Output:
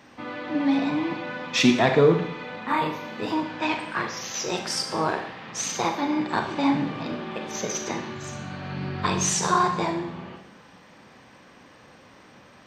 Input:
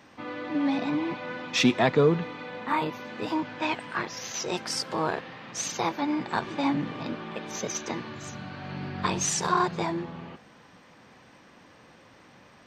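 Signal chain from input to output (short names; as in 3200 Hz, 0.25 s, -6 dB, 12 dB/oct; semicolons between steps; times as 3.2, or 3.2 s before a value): Schroeder reverb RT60 0.68 s, combs from 29 ms, DRR 5 dB; gain +2 dB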